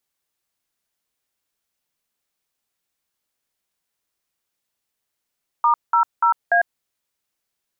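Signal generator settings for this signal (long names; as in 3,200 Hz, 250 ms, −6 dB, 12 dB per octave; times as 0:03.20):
touch tones "*00A", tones 100 ms, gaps 192 ms, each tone −15.5 dBFS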